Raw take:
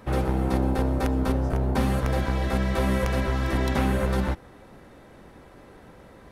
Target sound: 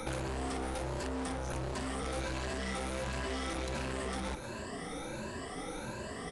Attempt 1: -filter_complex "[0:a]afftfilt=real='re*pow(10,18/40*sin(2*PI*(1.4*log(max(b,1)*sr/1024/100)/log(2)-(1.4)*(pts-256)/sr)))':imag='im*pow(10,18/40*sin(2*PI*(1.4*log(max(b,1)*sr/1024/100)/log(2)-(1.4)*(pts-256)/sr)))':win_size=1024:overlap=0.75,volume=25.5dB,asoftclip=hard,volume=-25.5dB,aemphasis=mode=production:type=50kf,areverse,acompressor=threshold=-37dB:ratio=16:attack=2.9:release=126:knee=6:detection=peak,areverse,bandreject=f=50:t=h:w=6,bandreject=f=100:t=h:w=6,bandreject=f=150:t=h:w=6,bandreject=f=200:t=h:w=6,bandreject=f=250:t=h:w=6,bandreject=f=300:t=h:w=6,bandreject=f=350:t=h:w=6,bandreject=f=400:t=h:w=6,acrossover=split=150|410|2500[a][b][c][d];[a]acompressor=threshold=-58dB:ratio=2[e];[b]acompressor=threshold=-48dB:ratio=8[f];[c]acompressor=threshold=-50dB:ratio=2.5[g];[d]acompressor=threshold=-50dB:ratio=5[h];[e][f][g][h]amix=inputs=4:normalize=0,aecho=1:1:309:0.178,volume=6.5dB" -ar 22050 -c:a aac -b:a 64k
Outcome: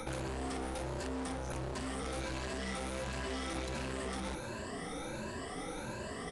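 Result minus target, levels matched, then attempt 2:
compressor: peak gain reduction +6 dB
-filter_complex "[0:a]afftfilt=real='re*pow(10,18/40*sin(2*PI*(1.4*log(max(b,1)*sr/1024/100)/log(2)-(1.4)*(pts-256)/sr)))':imag='im*pow(10,18/40*sin(2*PI*(1.4*log(max(b,1)*sr/1024/100)/log(2)-(1.4)*(pts-256)/sr)))':win_size=1024:overlap=0.75,volume=25.5dB,asoftclip=hard,volume=-25.5dB,aemphasis=mode=production:type=50kf,areverse,acompressor=threshold=-30.5dB:ratio=16:attack=2.9:release=126:knee=6:detection=peak,areverse,bandreject=f=50:t=h:w=6,bandreject=f=100:t=h:w=6,bandreject=f=150:t=h:w=6,bandreject=f=200:t=h:w=6,bandreject=f=250:t=h:w=6,bandreject=f=300:t=h:w=6,bandreject=f=350:t=h:w=6,bandreject=f=400:t=h:w=6,acrossover=split=150|410|2500[a][b][c][d];[a]acompressor=threshold=-58dB:ratio=2[e];[b]acompressor=threshold=-48dB:ratio=8[f];[c]acompressor=threshold=-50dB:ratio=2.5[g];[d]acompressor=threshold=-50dB:ratio=5[h];[e][f][g][h]amix=inputs=4:normalize=0,aecho=1:1:309:0.178,volume=6.5dB" -ar 22050 -c:a aac -b:a 64k

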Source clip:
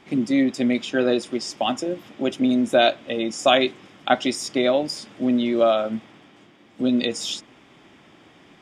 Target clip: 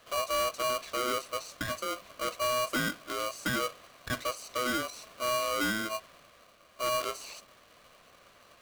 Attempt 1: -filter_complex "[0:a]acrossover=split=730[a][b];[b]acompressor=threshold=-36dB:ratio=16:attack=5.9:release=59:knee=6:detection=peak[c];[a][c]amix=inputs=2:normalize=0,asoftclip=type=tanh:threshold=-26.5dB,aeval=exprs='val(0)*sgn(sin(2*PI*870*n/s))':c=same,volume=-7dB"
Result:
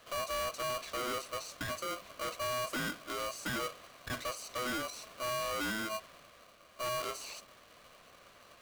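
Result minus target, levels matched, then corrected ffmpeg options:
soft clip: distortion +7 dB
-filter_complex "[0:a]acrossover=split=730[a][b];[b]acompressor=threshold=-36dB:ratio=16:attack=5.9:release=59:knee=6:detection=peak[c];[a][c]amix=inputs=2:normalize=0,asoftclip=type=tanh:threshold=-18dB,aeval=exprs='val(0)*sgn(sin(2*PI*870*n/s))':c=same,volume=-7dB"

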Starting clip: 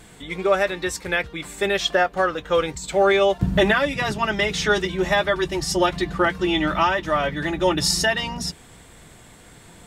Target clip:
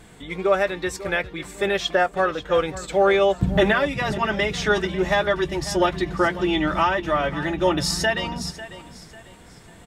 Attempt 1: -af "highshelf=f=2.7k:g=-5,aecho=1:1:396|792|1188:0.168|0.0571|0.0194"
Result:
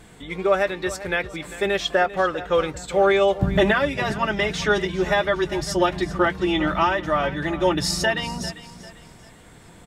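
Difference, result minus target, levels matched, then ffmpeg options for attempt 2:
echo 0.15 s early
-af "highshelf=f=2.7k:g=-5,aecho=1:1:546|1092|1638:0.168|0.0571|0.0194"

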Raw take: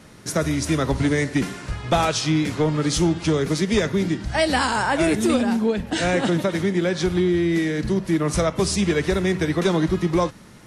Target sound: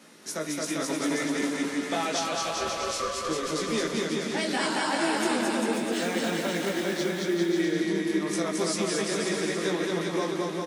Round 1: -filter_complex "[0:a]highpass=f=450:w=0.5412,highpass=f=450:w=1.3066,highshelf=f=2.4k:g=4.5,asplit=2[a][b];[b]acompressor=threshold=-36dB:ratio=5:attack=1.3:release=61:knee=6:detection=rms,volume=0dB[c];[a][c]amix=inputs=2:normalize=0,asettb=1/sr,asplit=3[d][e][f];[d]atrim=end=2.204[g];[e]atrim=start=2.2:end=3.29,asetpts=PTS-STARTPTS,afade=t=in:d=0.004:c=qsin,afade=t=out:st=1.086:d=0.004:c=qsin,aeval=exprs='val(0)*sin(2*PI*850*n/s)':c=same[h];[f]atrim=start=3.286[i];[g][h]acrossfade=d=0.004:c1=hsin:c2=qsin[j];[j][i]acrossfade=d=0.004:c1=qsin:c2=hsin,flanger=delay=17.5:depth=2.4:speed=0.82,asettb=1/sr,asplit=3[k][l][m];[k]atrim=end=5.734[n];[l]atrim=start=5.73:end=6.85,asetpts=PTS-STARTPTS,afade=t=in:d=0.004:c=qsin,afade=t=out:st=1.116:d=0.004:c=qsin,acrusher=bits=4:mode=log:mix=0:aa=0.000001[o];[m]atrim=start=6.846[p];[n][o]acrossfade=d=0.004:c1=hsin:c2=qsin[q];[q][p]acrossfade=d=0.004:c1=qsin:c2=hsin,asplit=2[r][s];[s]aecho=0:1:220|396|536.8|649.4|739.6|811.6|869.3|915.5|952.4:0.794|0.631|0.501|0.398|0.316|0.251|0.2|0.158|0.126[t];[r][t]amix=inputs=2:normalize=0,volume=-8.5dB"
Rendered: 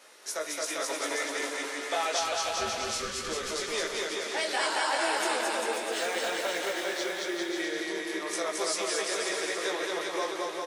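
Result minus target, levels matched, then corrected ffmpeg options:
250 Hz band -9.0 dB
-filter_complex "[0:a]highpass=f=210:w=0.5412,highpass=f=210:w=1.3066,highshelf=f=2.4k:g=4.5,asplit=2[a][b];[b]acompressor=threshold=-36dB:ratio=5:attack=1.3:release=61:knee=6:detection=rms,volume=0dB[c];[a][c]amix=inputs=2:normalize=0,asettb=1/sr,asplit=3[d][e][f];[d]atrim=end=2.204[g];[e]atrim=start=2.2:end=3.29,asetpts=PTS-STARTPTS,afade=t=in:d=0.004:c=qsin,afade=t=out:st=1.086:d=0.004:c=qsin,aeval=exprs='val(0)*sin(2*PI*850*n/s)':c=same[h];[f]atrim=start=3.286[i];[g][h]acrossfade=d=0.004:c1=hsin:c2=qsin[j];[j][i]acrossfade=d=0.004:c1=qsin:c2=hsin,flanger=delay=17.5:depth=2.4:speed=0.82,asettb=1/sr,asplit=3[k][l][m];[k]atrim=end=5.734[n];[l]atrim=start=5.73:end=6.85,asetpts=PTS-STARTPTS,afade=t=in:d=0.004:c=qsin,afade=t=out:st=1.116:d=0.004:c=qsin,acrusher=bits=4:mode=log:mix=0:aa=0.000001[o];[m]atrim=start=6.846[p];[n][o]acrossfade=d=0.004:c1=hsin:c2=qsin[q];[q][p]acrossfade=d=0.004:c1=qsin:c2=hsin,asplit=2[r][s];[s]aecho=0:1:220|396|536.8|649.4|739.6|811.6|869.3|915.5|952.4:0.794|0.631|0.501|0.398|0.316|0.251|0.2|0.158|0.126[t];[r][t]amix=inputs=2:normalize=0,volume=-8.5dB"

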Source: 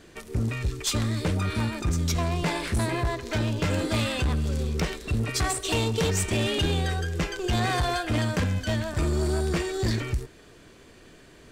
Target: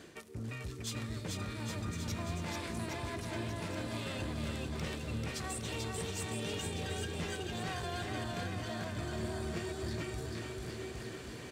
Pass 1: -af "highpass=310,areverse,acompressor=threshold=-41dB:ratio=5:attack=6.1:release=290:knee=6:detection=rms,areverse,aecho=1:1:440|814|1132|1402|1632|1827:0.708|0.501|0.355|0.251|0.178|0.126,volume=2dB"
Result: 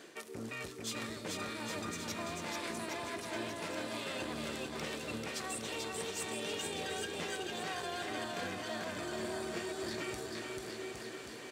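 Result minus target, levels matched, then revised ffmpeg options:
125 Hz band -11.0 dB
-af "highpass=88,areverse,acompressor=threshold=-41dB:ratio=5:attack=6.1:release=290:knee=6:detection=rms,areverse,aecho=1:1:440|814|1132|1402|1632|1827:0.708|0.501|0.355|0.251|0.178|0.126,volume=2dB"

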